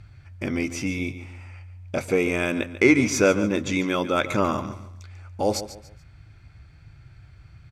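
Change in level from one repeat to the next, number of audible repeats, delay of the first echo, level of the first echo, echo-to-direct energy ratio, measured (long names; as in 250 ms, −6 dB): −10.0 dB, 3, 143 ms, −13.0 dB, −12.5 dB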